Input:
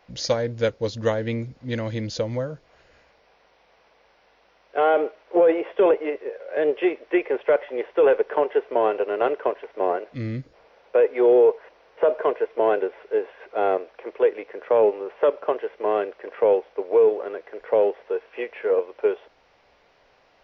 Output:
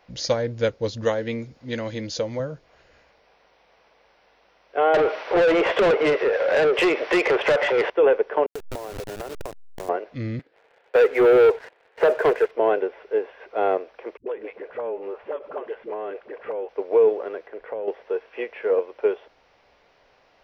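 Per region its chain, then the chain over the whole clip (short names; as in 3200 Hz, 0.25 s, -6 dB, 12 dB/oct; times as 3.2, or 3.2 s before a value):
1.04–2.4 tone controls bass -5 dB, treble +3 dB + doubler 13 ms -14 dB
4.94–7.9 compressor 2:1, threshold -34 dBFS + overdrive pedal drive 30 dB, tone 4200 Hz, clips at -10 dBFS
8.46–9.89 level-crossing sampler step -22.5 dBFS + compressor 12:1, threshold -29 dBFS
10.39–12.51 speaker cabinet 390–3600 Hz, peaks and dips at 410 Hz +3 dB, 600 Hz -4 dB, 1100 Hz -5 dB, 1700 Hz +5 dB + sample leveller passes 2
14.17–16.69 air absorption 140 m + compressor 12:1, threshold -25 dBFS + dispersion highs, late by 96 ms, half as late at 310 Hz
17.47–17.88 air absorption 170 m + compressor, threshold -27 dBFS
whole clip: dry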